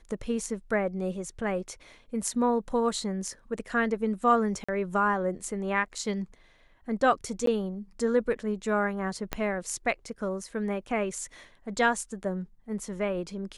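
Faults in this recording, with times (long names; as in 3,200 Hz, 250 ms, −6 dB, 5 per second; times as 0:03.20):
0:04.64–0:04.68: drop-out 45 ms
0:07.46–0:07.47: drop-out 13 ms
0:09.33: click −13 dBFS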